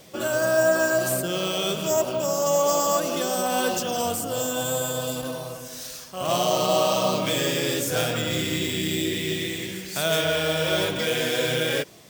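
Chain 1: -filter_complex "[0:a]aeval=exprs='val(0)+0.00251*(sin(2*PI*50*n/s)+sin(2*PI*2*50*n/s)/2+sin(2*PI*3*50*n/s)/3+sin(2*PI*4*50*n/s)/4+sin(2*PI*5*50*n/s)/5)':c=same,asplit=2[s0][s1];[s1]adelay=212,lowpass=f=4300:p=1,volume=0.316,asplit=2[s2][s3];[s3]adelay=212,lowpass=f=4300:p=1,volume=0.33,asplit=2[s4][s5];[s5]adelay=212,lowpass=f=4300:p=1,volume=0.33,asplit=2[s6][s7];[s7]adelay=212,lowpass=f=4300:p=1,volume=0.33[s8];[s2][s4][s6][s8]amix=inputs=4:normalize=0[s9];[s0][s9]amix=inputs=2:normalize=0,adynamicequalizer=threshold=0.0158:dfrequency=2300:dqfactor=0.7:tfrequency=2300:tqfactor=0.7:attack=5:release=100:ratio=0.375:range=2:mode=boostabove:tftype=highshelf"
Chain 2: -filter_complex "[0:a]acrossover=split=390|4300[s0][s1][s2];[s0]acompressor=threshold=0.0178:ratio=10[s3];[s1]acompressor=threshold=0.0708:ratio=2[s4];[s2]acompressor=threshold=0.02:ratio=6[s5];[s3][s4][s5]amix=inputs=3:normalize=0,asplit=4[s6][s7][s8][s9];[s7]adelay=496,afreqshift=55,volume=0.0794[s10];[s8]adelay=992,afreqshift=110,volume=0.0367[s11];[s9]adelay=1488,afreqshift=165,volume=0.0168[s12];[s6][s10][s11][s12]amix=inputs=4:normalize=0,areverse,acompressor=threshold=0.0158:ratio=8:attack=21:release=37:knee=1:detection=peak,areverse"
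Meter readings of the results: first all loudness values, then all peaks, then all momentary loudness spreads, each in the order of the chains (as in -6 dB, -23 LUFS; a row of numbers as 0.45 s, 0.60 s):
-22.0 LUFS, -34.0 LUFS; -7.0 dBFS, -21.0 dBFS; 7 LU, 2 LU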